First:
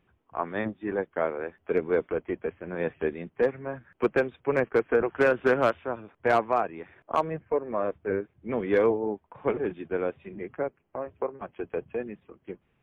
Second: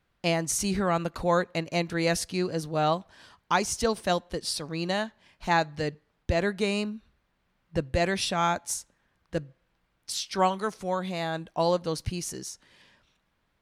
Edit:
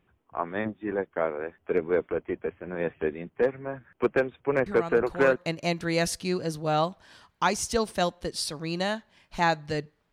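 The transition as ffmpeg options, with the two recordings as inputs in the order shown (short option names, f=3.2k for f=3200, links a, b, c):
-filter_complex "[1:a]asplit=2[a][b];[0:a]apad=whole_dur=10.12,atrim=end=10.12,atrim=end=5.362[c];[b]atrim=start=1.448:end=6.21[d];[a]atrim=start=0.75:end=1.45,asetpts=PTS-STARTPTS,volume=-8.5dB,afade=t=in:d=0.004:c=hsin,afade=t=out:st=0.696:d=0.004:c=hsin,adelay=4660[e];[c][d]acrossfade=d=0.004:c1=hsin:c2=hsin[f];[f][e]amix=inputs=2:normalize=0"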